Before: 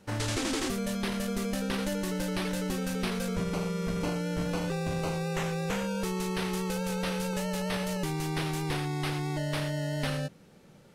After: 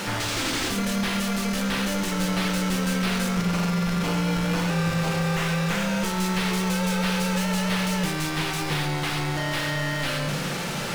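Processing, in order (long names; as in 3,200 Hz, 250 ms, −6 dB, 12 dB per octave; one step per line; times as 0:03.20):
parametric band 460 Hz −6 dB 1.9 octaves
in parallel at +2 dB: compressor whose output falls as the input rises −42 dBFS
on the sum: soft clipping −31.5 dBFS, distortion −11 dB
mid-hump overdrive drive 32 dB, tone 5,400 Hz, clips at −31.5 dBFS
on a send at −4.5 dB: convolution reverb RT60 1.0 s, pre-delay 6 ms
on the sum: level +7.5 dB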